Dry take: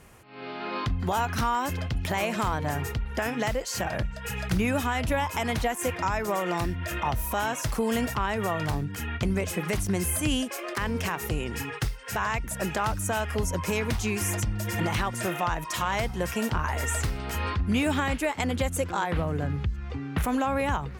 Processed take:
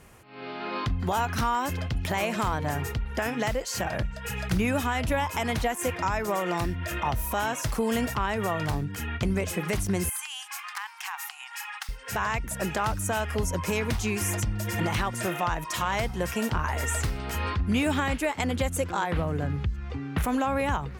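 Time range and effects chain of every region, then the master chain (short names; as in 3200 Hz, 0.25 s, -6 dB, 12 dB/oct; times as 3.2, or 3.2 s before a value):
10.09–11.89 compressor 3:1, threshold -28 dBFS + brick-wall FIR high-pass 730 Hz
whole clip: dry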